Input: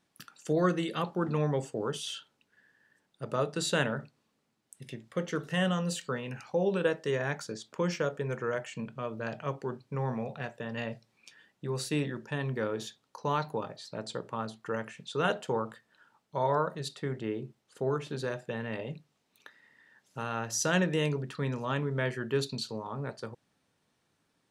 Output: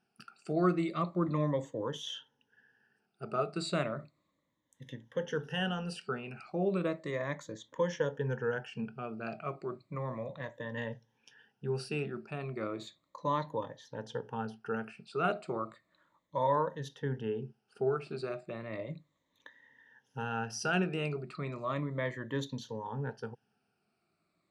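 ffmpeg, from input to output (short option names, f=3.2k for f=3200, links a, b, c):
-af "afftfilt=real='re*pow(10,15/40*sin(2*PI*(1.1*log(max(b,1)*sr/1024/100)/log(2)-(-0.34)*(pts-256)/sr)))':imag='im*pow(10,15/40*sin(2*PI*(1.1*log(max(b,1)*sr/1024/100)/log(2)-(-0.34)*(pts-256)/sr)))':win_size=1024:overlap=0.75,aemphasis=mode=reproduction:type=50fm,volume=-5dB"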